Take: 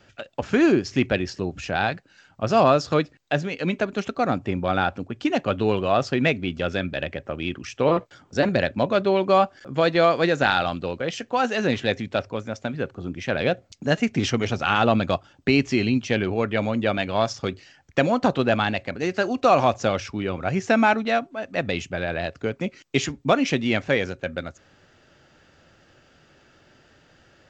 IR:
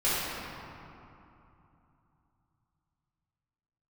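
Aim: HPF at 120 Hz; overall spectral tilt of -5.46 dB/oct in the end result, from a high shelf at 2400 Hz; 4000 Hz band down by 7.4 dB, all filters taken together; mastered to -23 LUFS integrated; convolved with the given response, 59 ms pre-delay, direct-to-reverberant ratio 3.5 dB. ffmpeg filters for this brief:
-filter_complex "[0:a]highpass=120,highshelf=f=2.4k:g=-6.5,equalizer=f=4k:t=o:g=-4,asplit=2[a][b];[1:a]atrim=start_sample=2205,adelay=59[c];[b][c]afir=irnorm=-1:irlink=0,volume=-16.5dB[d];[a][d]amix=inputs=2:normalize=0,volume=-0.5dB"

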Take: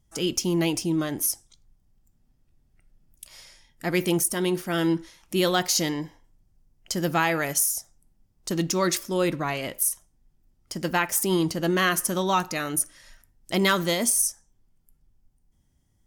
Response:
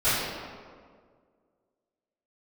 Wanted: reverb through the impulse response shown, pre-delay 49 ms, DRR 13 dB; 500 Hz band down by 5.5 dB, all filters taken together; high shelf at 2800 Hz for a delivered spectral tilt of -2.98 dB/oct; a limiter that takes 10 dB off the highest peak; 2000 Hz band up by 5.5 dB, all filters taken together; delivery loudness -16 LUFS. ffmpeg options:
-filter_complex "[0:a]equalizer=f=500:t=o:g=-9,equalizer=f=2k:t=o:g=5.5,highshelf=f=2.8k:g=5,alimiter=limit=-14.5dB:level=0:latency=1,asplit=2[a][b];[1:a]atrim=start_sample=2205,adelay=49[c];[b][c]afir=irnorm=-1:irlink=0,volume=-29dB[d];[a][d]amix=inputs=2:normalize=0,volume=10dB"

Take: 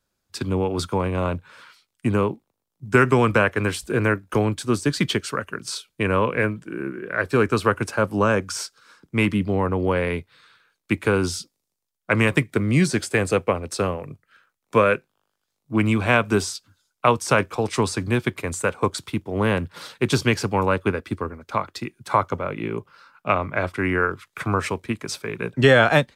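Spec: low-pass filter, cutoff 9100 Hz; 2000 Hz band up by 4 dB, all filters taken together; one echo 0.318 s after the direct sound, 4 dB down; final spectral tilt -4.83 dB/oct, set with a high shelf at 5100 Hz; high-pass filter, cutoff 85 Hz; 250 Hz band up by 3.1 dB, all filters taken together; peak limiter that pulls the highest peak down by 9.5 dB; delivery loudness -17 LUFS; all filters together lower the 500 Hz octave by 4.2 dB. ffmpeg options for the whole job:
-af "highpass=85,lowpass=9.1k,equalizer=f=250:t=o:g=6,equalizer=f=500:t=o:g=-7.5,equalizer=f=2k:t=o:g=5,highshelf=f=5.1k:g=5,alimiter=limit=-10dB:level=0:latency=1,aecho=1:1:318:0.631,volume=5.5dB"

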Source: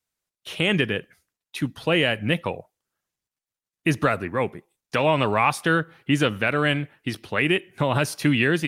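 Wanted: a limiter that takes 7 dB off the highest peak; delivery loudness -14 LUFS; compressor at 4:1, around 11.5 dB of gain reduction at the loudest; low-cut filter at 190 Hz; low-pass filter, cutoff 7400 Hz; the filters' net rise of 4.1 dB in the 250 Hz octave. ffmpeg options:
-af "highpass=190,lowpass=7.4k,equalizer=f=250:t=o:g=7,acompressor=threshold=-27dB:ratio=4,volume=18.5dB,alimiter=limit=-1dB:level=0:latency=1"

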